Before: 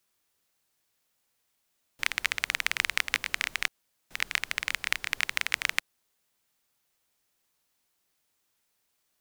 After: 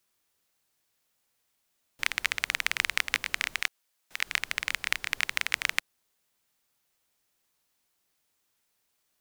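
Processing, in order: 3.6–4.27 low shelf 370 Hz -11.5 dB

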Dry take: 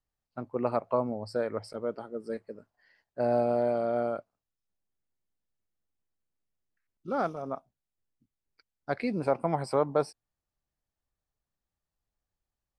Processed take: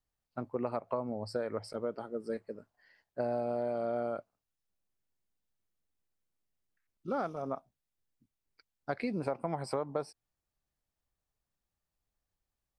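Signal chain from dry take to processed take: compressor, threshold -30 dBFS, peak gain reduction 10 dB

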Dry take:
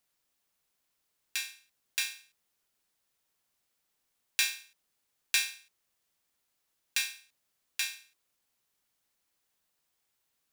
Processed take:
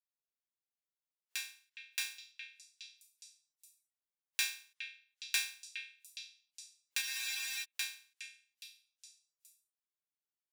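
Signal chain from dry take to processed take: delay with a stepping band-pass 0.414 s, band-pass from 2500 Hz, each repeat 0.7 oct, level -8 dB; spectral noise reduction 18 dB; spectral freeze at 7.03, 0.60 s; gain -5.5 dB

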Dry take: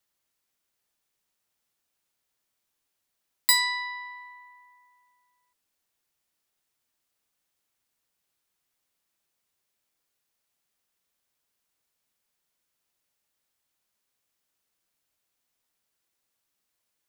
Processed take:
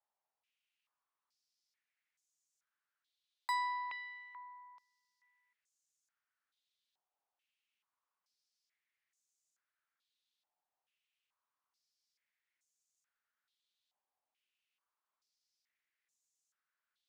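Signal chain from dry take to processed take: stepped band-pass 2.3 Hz 800–6800 Hz; gain +3.5 dB

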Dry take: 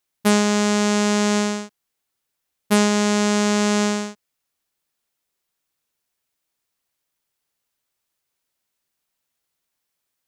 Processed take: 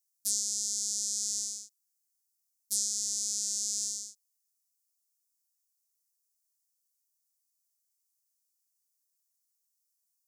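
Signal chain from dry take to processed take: inverse Chebyshev high-pass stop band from 2800 Hz, stop band 40 dB

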